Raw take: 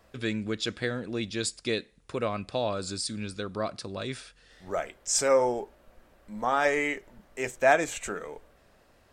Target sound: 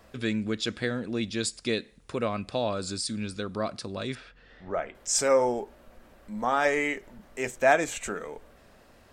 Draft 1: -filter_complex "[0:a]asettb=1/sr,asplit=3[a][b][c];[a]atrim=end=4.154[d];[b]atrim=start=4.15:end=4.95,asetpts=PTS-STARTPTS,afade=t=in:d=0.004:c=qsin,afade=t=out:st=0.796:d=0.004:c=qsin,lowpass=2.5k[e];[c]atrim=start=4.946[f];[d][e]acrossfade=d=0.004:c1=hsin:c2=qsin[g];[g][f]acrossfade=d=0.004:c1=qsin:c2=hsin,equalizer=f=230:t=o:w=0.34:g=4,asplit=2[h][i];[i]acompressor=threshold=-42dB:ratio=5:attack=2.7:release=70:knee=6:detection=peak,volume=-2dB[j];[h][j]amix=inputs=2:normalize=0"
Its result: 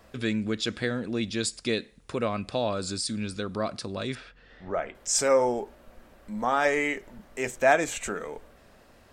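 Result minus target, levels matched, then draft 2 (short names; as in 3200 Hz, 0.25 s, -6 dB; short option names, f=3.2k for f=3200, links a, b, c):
compressor: peak gain reduction -9.5 dB
-filter_complex "[0:a]asettb=1/sr,asplit=3[a][b][c];[a]atrim=end=4.154[d];[b]atrim=start=4.15:end=4.95,asetpts=PTS-STARTPTS,afade=t=in:d=0.004:c=qsin,afade=t=out:st=0.796:d=0.004:c=qsin,lowpass=2.5k[e];[c]atrim=start=4.946[f];[d][e]acrossfade=d=0.004:c1=hsin:c2=qsin[g];[g][f]acrossfade=d=0.004:c1=qsin:c2=hsin,equalizer=f=230:t=o:w=0.34:g=4,asplit=2[h][i];[i]acompressor=threshold=-54dB:ratio=5:attack=2.7:release=70:knee=6:detection=peak,volume=-2dB[j];[h][j]amix=inputs=2:normalize=0"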